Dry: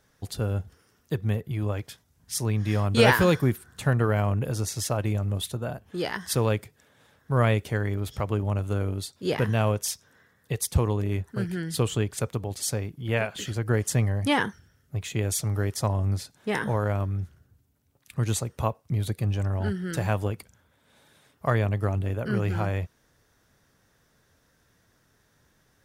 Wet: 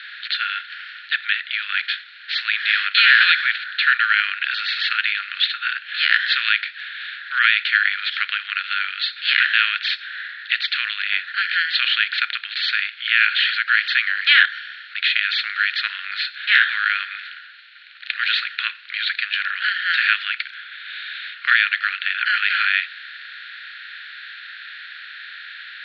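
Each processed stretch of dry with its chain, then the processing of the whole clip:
0:14.45–0:14.95: high-shelf EQ 4,400 Hz +8.5 dB + downward compressor 3 to 1, threshold −45 dBFS
whole clip: compressor on every frequency bin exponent 0.6; Chebyshev band-pass filter 1,400–4,300 Hz, order 5; boost into a limiter +15.5 dB; level −1 dB

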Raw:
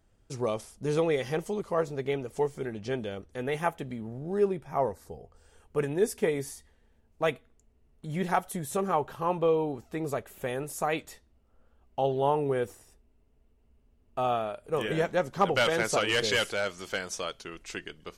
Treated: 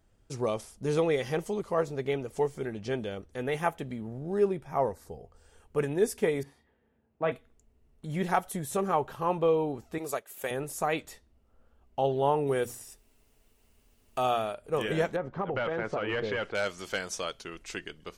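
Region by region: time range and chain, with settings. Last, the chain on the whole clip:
0:06.43–0:07.32: high-pass filter 120 Hz + high-frequency loss of the air 470 metres + double-tracking delay 36 ms −9 dB
0:09.98–0:10.51: high-pass filter 550 Hz 6 dB per octave + high-shelf EQ 4,600 Hz +9 dB + transient designer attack +3 dB, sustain −8 dB
0:12.47–0:14.54: high-shelf EQ 3,600 Hz +10.5 dB + mains-hum notches 60/120/180/240 Hz + one half of a high-frequency compander encoder only
0:15.16–0:16.55: low-pass filter 1,700 Hz + downward compressor 12 to 1, threshold −26 dBFS
whole clip: no processing

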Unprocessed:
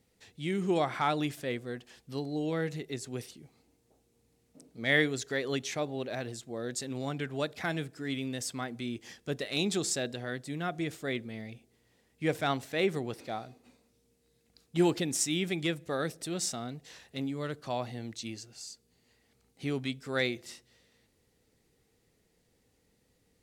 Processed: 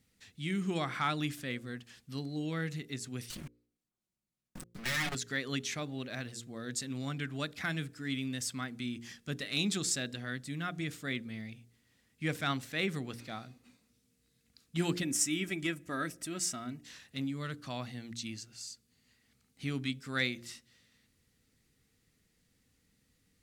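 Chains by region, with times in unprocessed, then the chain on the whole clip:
0:03.30–0:05.15: lower of the sound and its delayed copy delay 5.5 ms + output level in coarse steps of 20 dB + leveller curve on the samples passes 5
0:15.02–0:16.83: parametric band 3,900 Hz −9 dB 0.58 octaves + comb filter 3.1 ms, depth 48%
whole clip: flat-topped bell 570 Hz −9 dB; hum removal 58.72 Hz, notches 9

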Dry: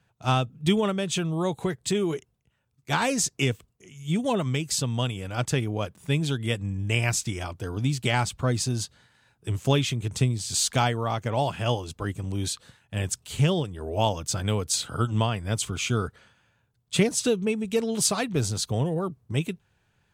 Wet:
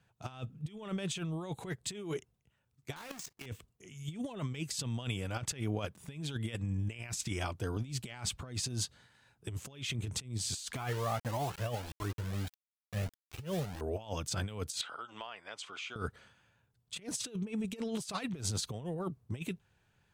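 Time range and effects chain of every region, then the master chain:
0:02.96–0:03.46: each half-wave held at its own peak + parametric band 110 Hz −6.5 dB 2.6 octaves + output level in coarse steps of 23 dB
0:10.75–0:13.81: low-pass filter 2,000 Hz + bit-depth reduction 6 bits, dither none + flanger whose copies keep moving one way rising 1.6 Hz
0:14.81–0:15.96: band-pass filter 770–3,700 Hz + downward compressor 4 to 1, threshold −37 dBFS
whole clip: dynamic equaliser 2,300 Hz, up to +4 dB, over −38 dBFS, Q 0.79; compressor whose output falls as the input rises −29 dBFS, ratio −0.5; level −7.5 dB

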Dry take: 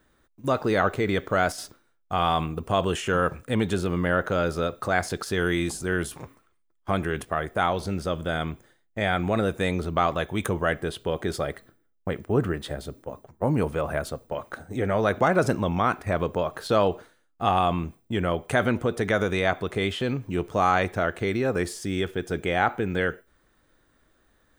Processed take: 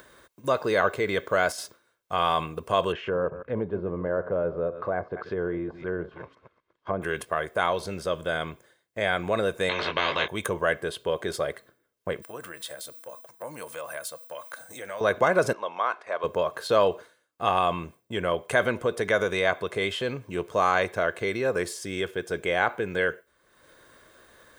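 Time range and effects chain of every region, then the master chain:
0:02.92–0:07.02: delay that plays each chunk backwards 127 ms, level −13 dB + treble cut that deepens with the level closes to 830 Hz, closed at −23 dBFS + high-frequency loss of the air 220 metres
0:09.69–0:10.28: Bessel low-pass filter 2,200 Hz, order 4 + double-tracking delay 20 ms −5 dB + every bin compressed towards the loudest bin 4 to 1
0:12.22–0:15.01: RIAA equalisation recording + downward compressor 2 to 1, threshold −38 dBFS + notch filter 410 Hz, Q 5.9
0:15.53–0:16.24: band-pass filter 650–4,100 Hz + parametric band 2,200 Hz −4.5 dB 1.3 octaves
whole clip: upward compression, threshold −39 dBFS; high-pass filter 300 Hz 6 dB per octave; comb filter 1.9 ms, depth 40%

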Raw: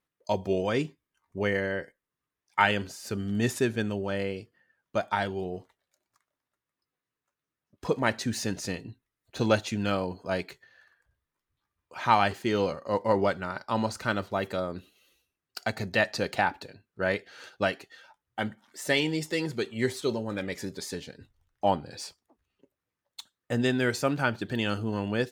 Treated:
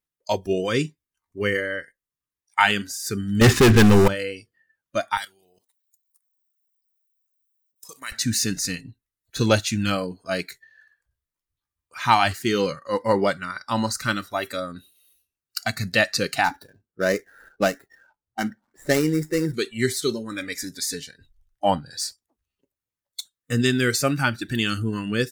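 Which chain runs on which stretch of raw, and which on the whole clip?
0:03.41–0:04.08: low-pass filter 2,200 Hz + leveller curve on the samples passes 5
0:05.17–0:08.12: RIAA equalisation recording + output level in coarse steps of 16 dB + flanger 1.6 Hz, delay 1.7 ms, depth 5.5 ms, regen +87%
0:16.44–0:19.54: running median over 15 samples + parametric band 370 Hz +3.5 dB 2.4 octaves + one half of a high-frequency compander decoder only
whole clip: low-shelf EQ 94 Hz +11.5 dB; noise reduction from a noise print of the clip's start 14 dB; high-shelf EQ 3,800 Hz +11.5 dB; level +3.5 dB

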